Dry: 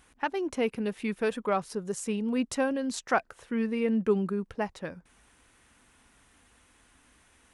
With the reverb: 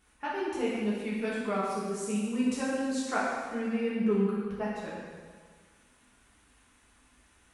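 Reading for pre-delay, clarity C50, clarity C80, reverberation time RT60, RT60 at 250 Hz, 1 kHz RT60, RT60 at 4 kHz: 3 ms, -1.5 dB, 1.0 dB, 1.6 s, 1.6 s, 1.6 s, 1.5 s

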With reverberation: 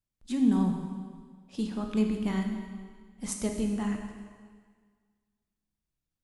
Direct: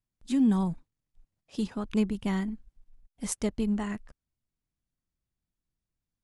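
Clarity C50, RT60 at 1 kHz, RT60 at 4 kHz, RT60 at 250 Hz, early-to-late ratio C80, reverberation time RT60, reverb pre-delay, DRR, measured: 4.5 dB, 1.7 s, 1.6 s, 1.7 s, 6.0 dB, 1.7 s, 7 ms, 2.5 dB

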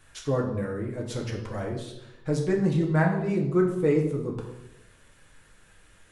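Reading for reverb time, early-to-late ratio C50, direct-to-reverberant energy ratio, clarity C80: 0.95 s, 6.0 dB, -0.5 dB, 8.5 dB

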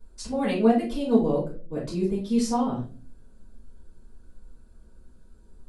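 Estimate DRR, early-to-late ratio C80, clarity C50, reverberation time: -8.5 dB, 12.5 dB, 6.0 dB, 0.40 s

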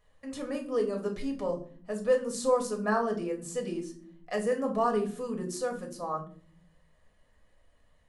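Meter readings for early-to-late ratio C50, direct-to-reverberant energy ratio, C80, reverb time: 11.0 dB, 0.5 dB, 16.0 dB, 0.50 s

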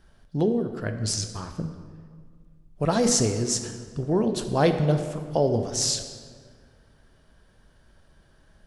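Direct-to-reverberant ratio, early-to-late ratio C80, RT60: 6.5 dB, 9.5 dB, 1.8 s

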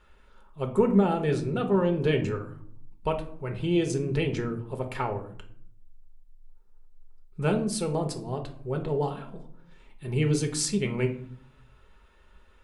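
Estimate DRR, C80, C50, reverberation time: 4.0 dB, 15.5 dB, 11.5 dB, 0.60 s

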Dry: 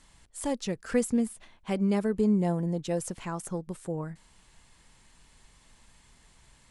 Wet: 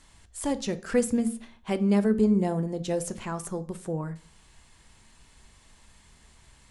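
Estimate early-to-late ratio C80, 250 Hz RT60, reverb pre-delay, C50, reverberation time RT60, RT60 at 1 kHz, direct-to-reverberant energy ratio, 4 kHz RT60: 22.5 dB, 0.55 s, 3 ms, 17.5 dB, 0.50 s, 0.50 s, 10.5 dB, 0.40 s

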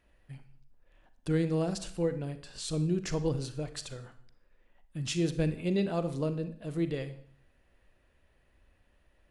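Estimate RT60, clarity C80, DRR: 0.55 s, 16.5 dB, 11.0 dB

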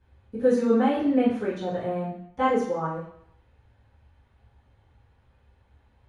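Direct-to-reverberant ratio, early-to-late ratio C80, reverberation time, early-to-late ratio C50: -10.5 dB, 7.5 dB, 0.70 s, 3.5 dB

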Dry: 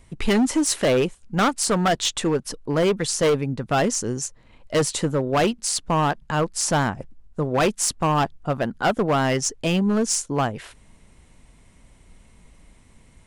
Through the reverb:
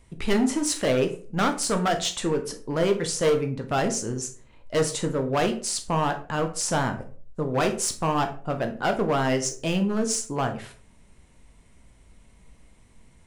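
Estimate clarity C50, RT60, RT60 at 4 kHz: 11.5 dB, 0.45 s, 0.25 s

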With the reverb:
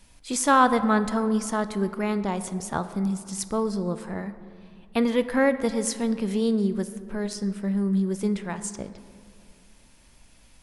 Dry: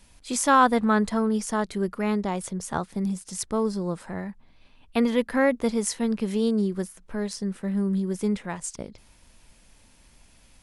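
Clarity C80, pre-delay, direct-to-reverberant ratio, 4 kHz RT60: 13.5 dB, 3 ms, 11.0 dB, 1.2 s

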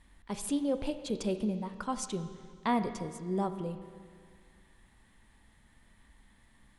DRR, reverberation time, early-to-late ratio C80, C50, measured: 8.5 dB, 2.0 s, 11.0 dB, 10.0 dB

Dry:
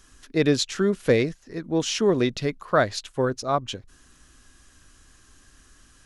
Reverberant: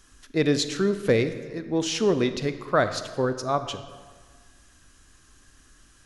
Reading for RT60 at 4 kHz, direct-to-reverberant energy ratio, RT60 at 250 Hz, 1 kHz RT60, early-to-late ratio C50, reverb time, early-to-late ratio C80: 1.1 s, 10.0 dB, 1.5 s, 1.6 s, 11.0 dB, 1.6 s, 12.5 dB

